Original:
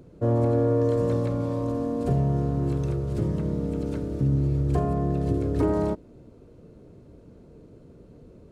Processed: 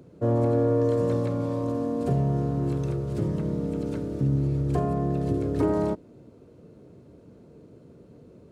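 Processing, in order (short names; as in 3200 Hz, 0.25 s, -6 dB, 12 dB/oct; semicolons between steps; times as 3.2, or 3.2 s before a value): HPF 94 Hz 12 dB/oct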